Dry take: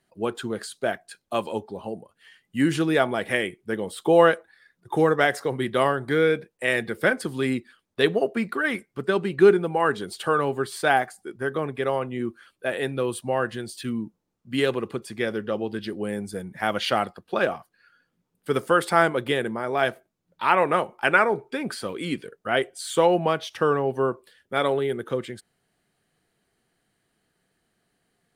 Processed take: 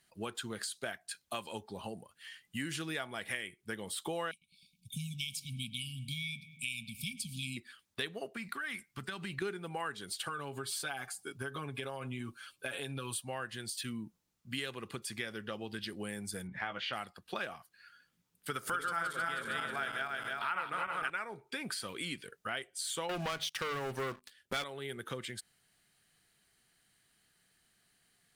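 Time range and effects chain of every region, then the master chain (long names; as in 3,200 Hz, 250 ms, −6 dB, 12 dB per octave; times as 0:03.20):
0:04.31–0:07.57: linear-phase brick-wall band-stop 260–2,200 Hz + feedback echo with a low-pass in the loop 105 ms, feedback 72%, low-pass 2,300 Hz, level −18 dB
0:08.36–0:09.42: parametric band 450 Hz −8.5 dB 0.83 octaves + downward compressor, threshold −29 dBFS
0:10.28–0:13.25: notch filter 1,900 Hz, Q 5.4 + comb filter 7.2 ms, depth 78% + downward compressor 2.5 to 1, threshold −26 dBFS
0:16.47–0:16.93: low-pass filter 2,600 Hz + double-tracking delay 16 ms −6.5 dB
0:18.50–0:21.10: feedback delay that plays each chunk backwards 158 ms, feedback 66%, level −1 dB + parametric band 1,400 Hz +10.5 dB 0.34 octaves + upward compression, threshold −19 dBFS
0:23.09–0:24.64: mains-hum notches 50/100/150/200/250 Hz + leveller curve on the samples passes 3
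whole clip: guitar amp tone stack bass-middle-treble 5-5-5; downward compressor 4 to 1, threshold −49 dBFS; level +11.5 dB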